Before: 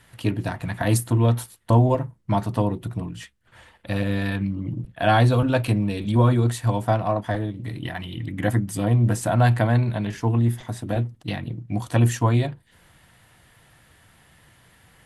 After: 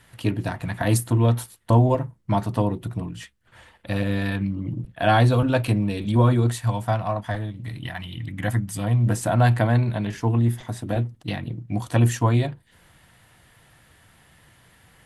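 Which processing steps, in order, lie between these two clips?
6.59–9.07 bell 370 Hz -8.5 dB 1.3 oct

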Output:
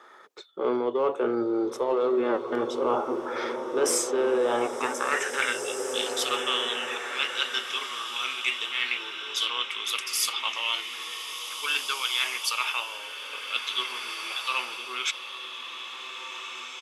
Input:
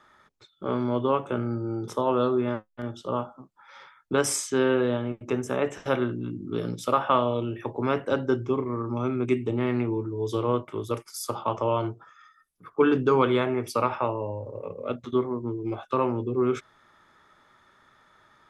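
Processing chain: AGC gain up to 12.5 dB; notch 600 Hz, Q 12; high-pass sweep 440 Hz -> 3000 Hz, 4.74–6.31; in parallel at -6 dB: soft clip -14.5 dBFS, distortion -7 dB; on the sum: tempo 1.1×; reverse; compressor 8:1, threshold -25 dBFS, peak gain reduction 20 dB; reverse; bloom reverb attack 1.99 s, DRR 5 dB; gain +1.5 dB

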